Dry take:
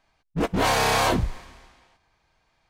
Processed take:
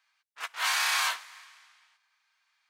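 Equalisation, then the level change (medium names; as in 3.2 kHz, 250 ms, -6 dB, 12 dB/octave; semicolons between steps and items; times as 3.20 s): high-pass 1.2 kHz 24 dB/octave; -1.5 dB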